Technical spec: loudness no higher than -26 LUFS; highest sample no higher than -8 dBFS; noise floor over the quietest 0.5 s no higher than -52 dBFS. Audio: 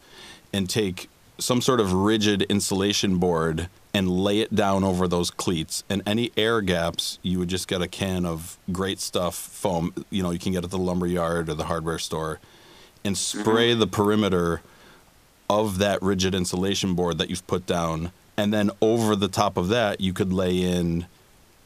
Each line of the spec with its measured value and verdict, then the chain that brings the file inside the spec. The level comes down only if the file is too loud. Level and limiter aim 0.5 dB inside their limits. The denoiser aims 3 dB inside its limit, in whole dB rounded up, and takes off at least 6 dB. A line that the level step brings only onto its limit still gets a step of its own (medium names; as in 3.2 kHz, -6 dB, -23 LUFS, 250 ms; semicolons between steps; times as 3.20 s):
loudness -24.0 LUFS: fail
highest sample -3.5 dBFS: fail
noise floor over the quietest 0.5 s -56 dBFS: pass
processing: trim -2.5 dB; peak limiter -8.5 dBFS